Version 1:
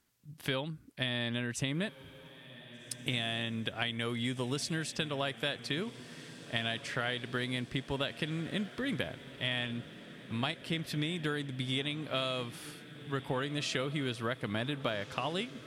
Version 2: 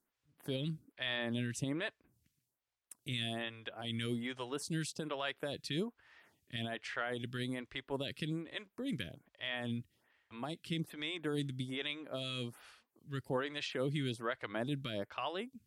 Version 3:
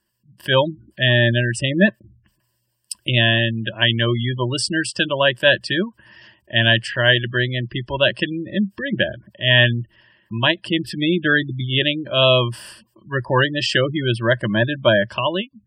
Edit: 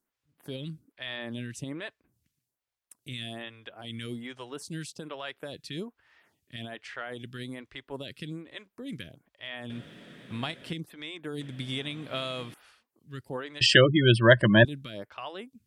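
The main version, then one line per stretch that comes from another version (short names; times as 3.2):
2
9.7–10.73 from 1
11.41–12.54 from 1
13.61–14.65 from 3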